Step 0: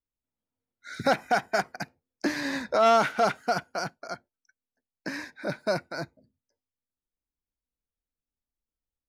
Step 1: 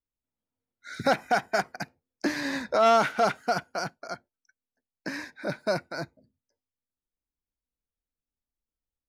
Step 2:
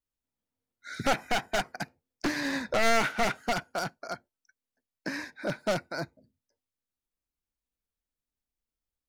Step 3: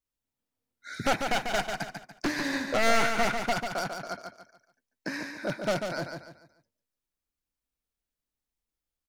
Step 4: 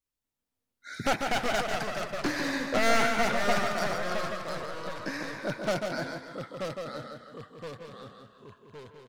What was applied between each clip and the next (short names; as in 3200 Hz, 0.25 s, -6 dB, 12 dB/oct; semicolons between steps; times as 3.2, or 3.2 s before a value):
nothing audible
one-sided fold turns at -23 dBFS
feedback echo 0.144 s, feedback 35%, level -6 dB
echoes that change speed 0.239 s, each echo -2 st, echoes 3, each echo -6 dB; speakerphone echo 0.16 s, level -11 dB; gain -1 dB